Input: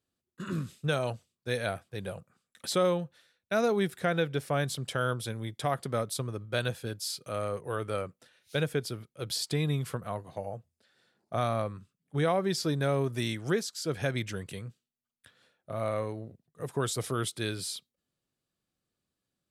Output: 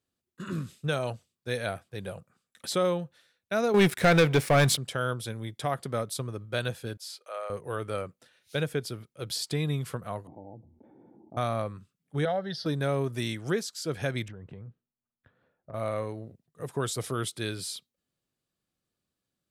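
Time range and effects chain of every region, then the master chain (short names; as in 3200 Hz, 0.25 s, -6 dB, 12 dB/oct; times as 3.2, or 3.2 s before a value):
3.74–4.77 bell 2200 Hz +6.5 dB 0.49 oct + sample leveller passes 3
6.97–7.5 HPF 550 Hz 24 dB/oct + high shelf 3600 Hz -9 dB
10.27–11.37 vocal tract filter u + fast leveller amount 70%
12.25–12.66 LPF 6200 Hz + fixed phaser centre 1600 Hz, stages 8
14.28–15.74 LPF 1200 Hz + low shelf 120 Hz +6.5 dB + compressor 12:1, threshold -39 dBFS
whole clip: dry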